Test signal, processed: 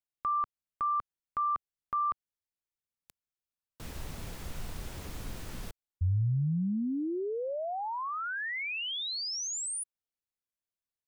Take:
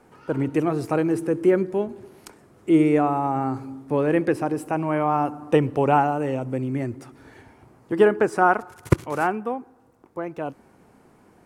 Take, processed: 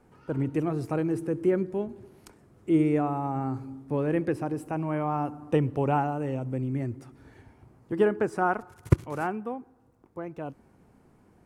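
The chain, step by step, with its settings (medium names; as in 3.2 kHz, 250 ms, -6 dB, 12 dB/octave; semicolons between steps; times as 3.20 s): bass shelf 190 Hz +11 dB; trim -8.5 dB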